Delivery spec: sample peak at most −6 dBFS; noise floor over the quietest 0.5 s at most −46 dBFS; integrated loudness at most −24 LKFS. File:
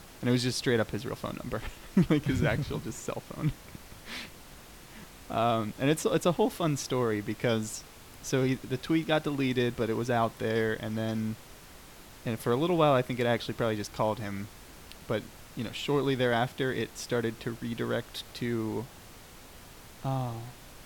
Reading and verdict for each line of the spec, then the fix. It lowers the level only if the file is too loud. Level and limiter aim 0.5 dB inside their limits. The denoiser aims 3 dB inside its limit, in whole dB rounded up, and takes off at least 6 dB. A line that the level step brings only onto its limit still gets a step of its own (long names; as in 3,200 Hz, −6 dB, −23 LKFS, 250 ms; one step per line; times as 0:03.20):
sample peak −12.0 dBFS: in spec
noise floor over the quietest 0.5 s −50 dBFS: in spec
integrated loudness −30.5 LKFS: in spec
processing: no processing needed